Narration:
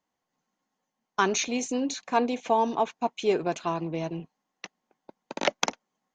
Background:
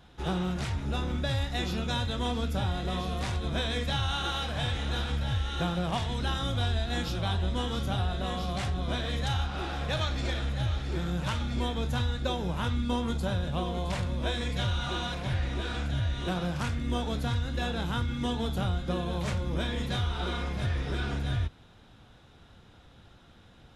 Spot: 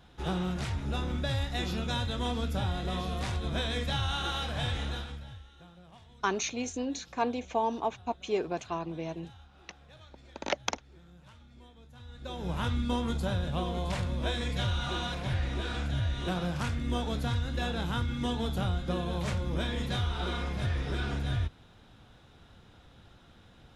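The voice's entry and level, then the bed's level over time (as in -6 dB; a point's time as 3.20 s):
5.05 s, -5.5 dB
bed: 4.83 s -1.5 dB
5.56 s -24 dB
11.93 s -24 dB
12.52 s -1 dB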